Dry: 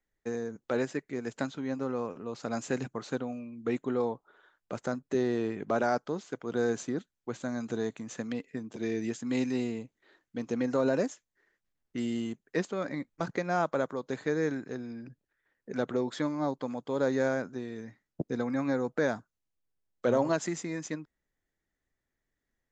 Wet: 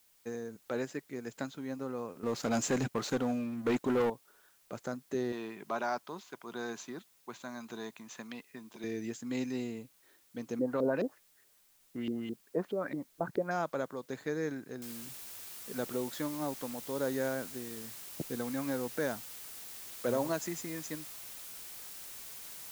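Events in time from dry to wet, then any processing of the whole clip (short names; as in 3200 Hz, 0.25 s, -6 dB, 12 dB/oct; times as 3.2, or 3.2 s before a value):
2.23–4.1 sample leveller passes 3
5.32–8.84 speaker cabinet 210–6800 Hz, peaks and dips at 280 Hz -7 dB, 490 Hz -9 dB, 1000 Hz +8 dB, 2500 Hz +4 dB, 3700 Hz +4 dB
10.59–13.51 LFO low-pass saw up 4.7 Hz 320–3700 Hz
14.82 noise floor step -65 dB -45 dB
whole clip: high shelf 5600 Hz +5 dB; gain -5.5 dB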